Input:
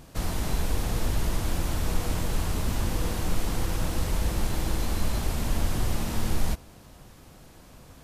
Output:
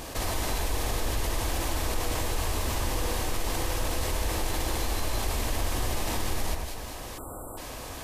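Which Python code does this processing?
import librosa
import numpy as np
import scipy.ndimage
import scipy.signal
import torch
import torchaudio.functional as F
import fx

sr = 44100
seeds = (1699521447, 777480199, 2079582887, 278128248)

y = fx.peak_eq(x, sr, hz=170.0, db=-13.0, octaves=0.93)
y = fx.notch(y, sr, hz=1400.0, q=10.0)
y = fx.echo_alternate(y, sr, ms=101, hz=2000.0, feedback_pct=56, wet_db=-8)
y = fx.spec_erase(y, sr, start_s=7.18, length_s=0.39, low_hz=1500.0, high_hz=7300.0)
y = fx.low_shelf(y, sr, hz=130.0, db=-7.0)
y = fx.env_flatten(y, sr, amount_pct=50)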